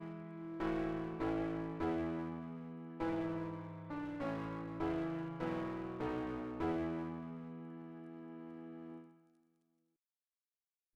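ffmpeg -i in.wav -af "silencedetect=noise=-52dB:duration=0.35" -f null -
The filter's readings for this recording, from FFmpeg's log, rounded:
silence_start: 9.05
silence_end: 10.96 | silence_duration: 1.91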